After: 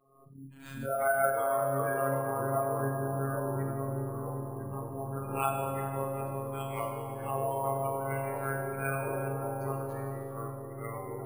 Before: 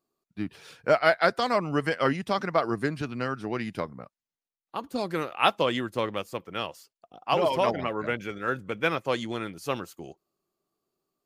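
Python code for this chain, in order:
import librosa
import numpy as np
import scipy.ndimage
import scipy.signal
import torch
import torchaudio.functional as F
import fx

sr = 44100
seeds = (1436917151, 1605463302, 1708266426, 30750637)

p1 = fx.frame_reverse(x, sr, frame_ms=83.0)
p2 = fx.lowpass(p1, sr, hz=2000.0, slope=6)
p3 = fx.spec_gate(p2, sr, threshold_db=-15, keep='strong')
p4 = fx.peak_eq(p3, sr, hz=260.0, db=-12.5, octaves=0.97)
p5 = fx.level_steps(p4, sr, step_db=9)
p6 = p4 + (p5 * librosa.db_to_amplitude(2.0))
p7 = fx.robotise(p6, sr, hz=136.0)
p8 = p7 + fx.echo_filtered(p7, sr, ms=382, feedback_pct=80, hz=1200.0, wet_db=-8.5, dry=0)
p9 = fx.echo_pitch(p8, sr, ms=321, semitones=-3, count=2, db_per_echo=-6.0)
p10 = fx.rev_schroeder(p9, sr, rt60_s=1.8, comb_ms=30, drr_db=2.0)
p11 = np.repeat(scipy.signal.resample_poly(p10, 1, 4), 4)[:len(p10)]
p12 = fx.pre_swell(p11, sr, db_per_s=63.0)
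y = p12 * librosa.db_to_amplitude(-7.0)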